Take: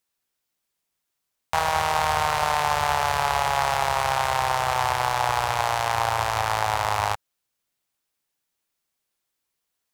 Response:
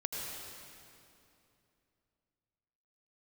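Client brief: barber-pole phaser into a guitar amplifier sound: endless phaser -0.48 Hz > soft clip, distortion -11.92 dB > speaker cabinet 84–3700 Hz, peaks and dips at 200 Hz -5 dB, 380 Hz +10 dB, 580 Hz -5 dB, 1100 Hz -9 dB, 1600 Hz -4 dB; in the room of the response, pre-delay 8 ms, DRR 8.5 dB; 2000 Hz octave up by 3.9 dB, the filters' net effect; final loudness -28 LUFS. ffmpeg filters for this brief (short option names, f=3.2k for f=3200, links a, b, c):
-filter_complex "[0:a]equalizer=f=2k:t=o:g=8,asplit=2[a][b];[1:a]atrim=start_sample=2205,adelay=8[c];[b][c]afir=irnorm=-1:irlink=0,volume=-11.5dB[d];[a][d]amix=inputs=2:normalize=0,asplit=2[e][f];[f]afreqshift=-0.48[g];[e][g]amix=inputs=2:normalize=1,asoftclip=threshold=-17.5dB,highpass=84,equalizer=f=200:t=q:w=4:g=-5,equalizer=f=380:t=q:w=4:g=10,equalizer=f=580:t=q:w=4:g=-5,equalizer=f=1.1k:t=q:w=4:g=-9,equalizer=f=1.6k:t=q:w=4:g=-4,lowpass=f=3.7k:w=0.5412,lowpass=f=3.7k:w=1.3066,volume=0.5dB"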